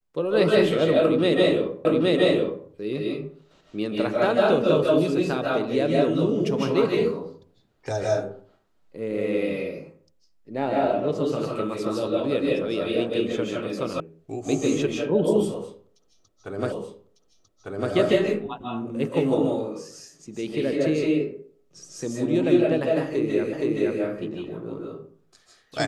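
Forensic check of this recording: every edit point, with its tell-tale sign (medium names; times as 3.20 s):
1.85 s: repeat of the last 0.82 s
14.00 s: sound stops dead
16.72 s: repeat of the last 1.2 s
23.53 s: repeat of the last 0.47 s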